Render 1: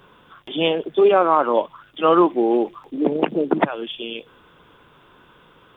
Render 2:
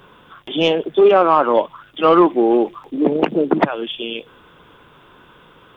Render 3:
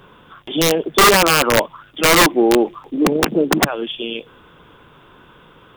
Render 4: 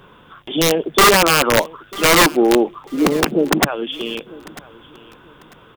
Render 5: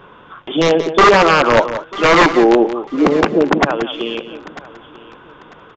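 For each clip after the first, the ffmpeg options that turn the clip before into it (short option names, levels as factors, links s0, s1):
-af "acontrast=29,volume=0.891"
-af "lowshelf=f=240:g=3.5,aeval=exprs='(mod(2*val(0)+1,2)-1)/2':c=same"
-af "aecho=1:1:945|1890:0.0891|0.0232"
-filter_complex "[0:a]asplit=2[s0][s1];[s1]highpass=f=720:p=1,volume=2.51,asoftclip=type=tanh:threshold=0.562[s2];[s0][s2]amix=inputs=2:normalize=0,lowpass=f=1200:p=1,volume=0.501,aresample=16000,aresample=44100,aecho=1:1:179:0.266,volume=1.78"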